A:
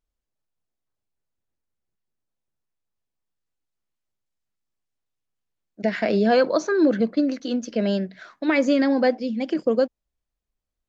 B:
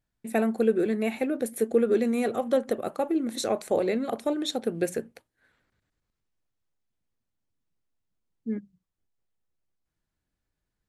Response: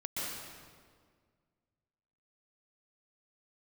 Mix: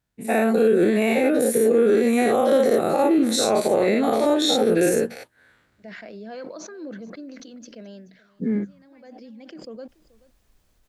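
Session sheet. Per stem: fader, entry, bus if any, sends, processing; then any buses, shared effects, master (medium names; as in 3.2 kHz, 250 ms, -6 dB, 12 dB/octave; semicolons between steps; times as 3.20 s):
-19.0 dB, 0.00 s, no send, echo send -21.5 dB, decay stretcher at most 26 dB/s; auto duck -20 dB, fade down 0.40 s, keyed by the second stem
0.0 dB, 0.00 s, no send, no echo send, every event in the spectrogram widened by 120 ms; high-pass 44 Hz; level rider gain up to 5 dB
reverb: none
echo: delay 430 ms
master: peak limiter -10 dBFS, peak gain reduction 6 dB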